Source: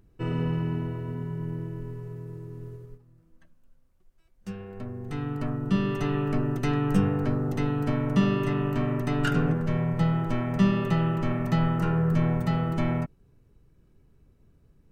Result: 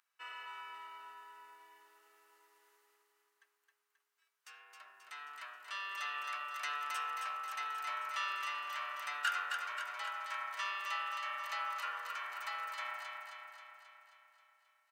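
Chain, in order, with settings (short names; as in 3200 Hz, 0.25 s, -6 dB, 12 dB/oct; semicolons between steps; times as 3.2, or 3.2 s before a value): HPF 1100 Hz 24 dB/oct; feedback echo 0.267 s, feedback 60%, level -4.5 dB; on a send at -18.5 dB: reverb RT60 0.70 s, pre-delay 35 ms; on the sum: gain -3 dB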